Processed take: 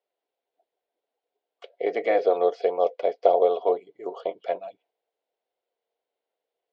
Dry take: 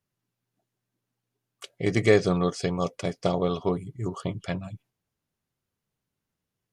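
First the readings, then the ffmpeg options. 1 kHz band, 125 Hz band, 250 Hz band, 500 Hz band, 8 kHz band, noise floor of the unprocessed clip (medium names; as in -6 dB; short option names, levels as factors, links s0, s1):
+7.0 dB, under -30 dB, -10.5 dB, +4.5 dB, under -20 dB, -85 dBFS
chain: -filter_complex "[0:a]afftfilt=real='re*lt(hypot(re,im),0.708)':imag='im*lt(hypot(re,im),0.708)':win_size=1024:overlap=0.75,highpass=f=410:w=0.5412,highpass=f=410:w=1.3066,equalizer=f=480:t=q:w=4:g=10,equalizer=f=700:t=q:w=4:g=10,equalizer=f=1200:t=q:w=4:g=-9,equalizer=f=1700:t=q:w=4:g=-6,equalizer=f=2600:t=q:w=4:g=-4,lowpass=f=3800:w=0.5412,lowpass=f=3800:w=1.3066,acrossover=split=2500[s0][s1];[s1]acompressor=threshold=0.00251:ratio=4:attack=1:release=60[s2];[s0][s2]amix=inputs=2:normalize=0,volume=1.19"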